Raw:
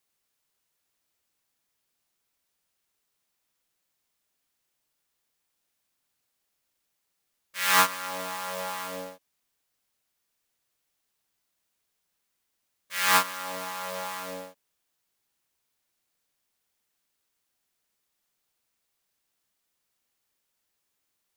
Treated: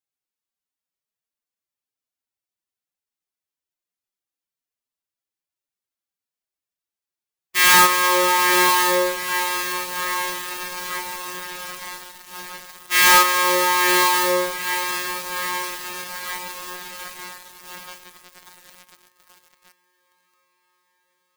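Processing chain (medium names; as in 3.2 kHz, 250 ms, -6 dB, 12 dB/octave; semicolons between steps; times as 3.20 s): echo that smears into a reverb 937 ms, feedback 74%, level -13 dB; formant-preserving pitch shift +11.5 st; waveshaping leveller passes 5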